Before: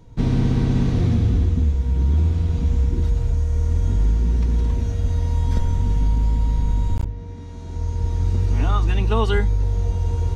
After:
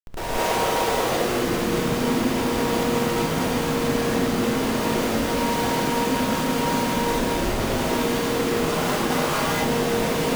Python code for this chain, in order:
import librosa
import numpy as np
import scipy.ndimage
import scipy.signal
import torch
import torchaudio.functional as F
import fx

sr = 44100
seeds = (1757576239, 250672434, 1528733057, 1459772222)

p1 = scipy.signal.sosfilt(scipy.signal.butter(4, 1600.0, 'lowpass', fs=sr, output='sos'), x)
p2 = fx.spec_gate(p1, sr, threshold_db=-20, keep='weak')
p3 = scipy.signal.sosfilt(scipy.signal.butter(4, 42.0, 'highpass', fs=sr, output='sos'), p2)
p4 = fx.low_shelf(p3, sr, hz=64.0, db=-11.5)
p5 = fx.over_compress(p4, sr, threshold_db=-43.0, ratio=-0.5)
p6 = p4 + F.gain(torch.from_numpy(p5), 0.0).numpy()
p7 = fx.quant_float(p6, sr, bits=2)
p8 = fx.schmitt(p7, sr, flips_db=-42.5)
p9 = fx.rev_gated(p8, sr, seeds[0], gate_ms=250, shape='rising', drr_db=-7.5)
y = F.gain(torch.from_numpy(p9), 4.5).numpy()